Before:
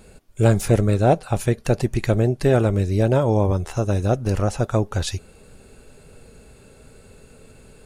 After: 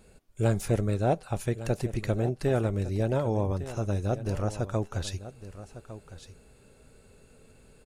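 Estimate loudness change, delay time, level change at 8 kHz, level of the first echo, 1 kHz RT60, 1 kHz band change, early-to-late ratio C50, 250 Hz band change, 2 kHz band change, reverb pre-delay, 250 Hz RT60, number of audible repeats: −9.0 dB, 1,156 ms, −9.0 dB, −14.0 dB, no reverb audible, −9.0 dB, no reverb audible, −9.0 dB, −9.0 dB, no reverb audible, no reverb audible, 1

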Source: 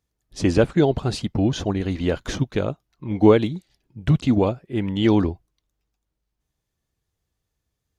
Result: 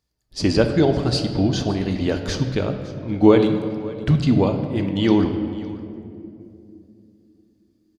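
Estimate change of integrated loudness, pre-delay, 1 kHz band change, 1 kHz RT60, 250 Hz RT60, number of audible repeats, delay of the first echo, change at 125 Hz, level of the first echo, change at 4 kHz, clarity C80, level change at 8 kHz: +1.5 dB, 3 ms, +1.0 dB, 2.2 s, 3.8 s, 1, 560 ms, +1.5 dB, −19.5 dB, +4.5 dB, 8.5 dB, can't be measured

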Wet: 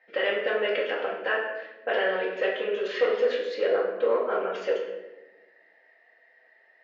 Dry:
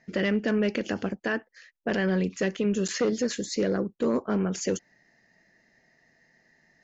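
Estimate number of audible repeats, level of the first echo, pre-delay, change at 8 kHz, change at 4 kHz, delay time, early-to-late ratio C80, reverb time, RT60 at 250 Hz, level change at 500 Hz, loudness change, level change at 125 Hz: no echo audible, no echo audible, 4 ms, can't be measured, +2.0 dB, no echo audible, 6.5 dB, 1.1 s, 1.6 s, +4.0 dB, +1.0 dB, below −20 dB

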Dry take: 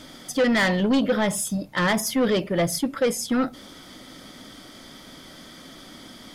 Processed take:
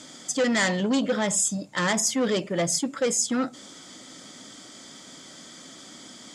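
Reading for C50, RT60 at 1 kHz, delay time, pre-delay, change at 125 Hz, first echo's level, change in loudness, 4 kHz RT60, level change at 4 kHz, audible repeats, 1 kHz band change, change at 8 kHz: no reverb audible, no reverb audible, no echo audible, no reverb audible, −4.0 dB, no echo audible, −1.5 dB, no reverb audible, −0.5 dB, no echo audible, −3.0 dB, +6.0 dB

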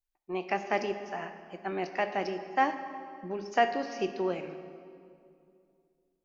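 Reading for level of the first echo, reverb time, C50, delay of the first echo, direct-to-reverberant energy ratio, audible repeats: no echo audible, 2.5 s, 9.5 dB, no echo audible, 8.0 dB, no echo audible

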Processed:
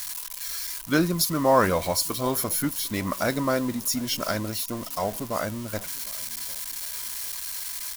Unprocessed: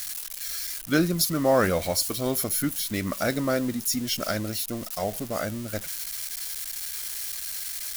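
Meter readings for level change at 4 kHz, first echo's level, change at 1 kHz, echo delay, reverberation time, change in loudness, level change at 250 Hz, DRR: 0.0 dB, −23.0 dB, +4.5 dB, 752 ms, no reverb audible, +0.5 dB, 0.0 dB, no reverb audible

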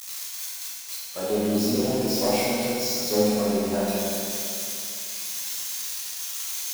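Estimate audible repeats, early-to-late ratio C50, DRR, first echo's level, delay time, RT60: no echo audible, −3.5 dB, −8.5 dB, no echo audible, no echo audible, 2.6 s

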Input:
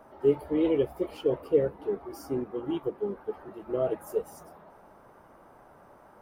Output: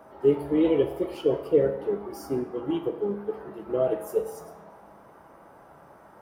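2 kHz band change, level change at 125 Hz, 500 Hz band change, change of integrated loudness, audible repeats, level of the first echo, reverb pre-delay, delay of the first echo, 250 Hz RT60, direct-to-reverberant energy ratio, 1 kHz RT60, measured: +3.5 dB, +3.0 dB, +3.0 dB, +3.0 dB, no echo audible, no echo audible, 6 ms, no echo audible, 0.85 s, 6.5 dB, 0.85 s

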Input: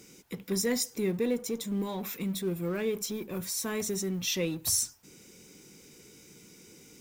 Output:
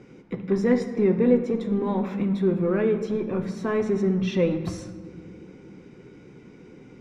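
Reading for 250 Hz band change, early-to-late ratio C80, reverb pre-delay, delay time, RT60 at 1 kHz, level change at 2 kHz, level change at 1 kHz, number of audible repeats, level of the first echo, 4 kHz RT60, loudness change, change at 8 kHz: +9.5 dB, 11.5 dB, 8 ms, no echo audible, 1.4 s, +3.0 dB, +8.5 dB, no echo audible, no echo audible, 1.0 s, +7.0 dB, below −15 dB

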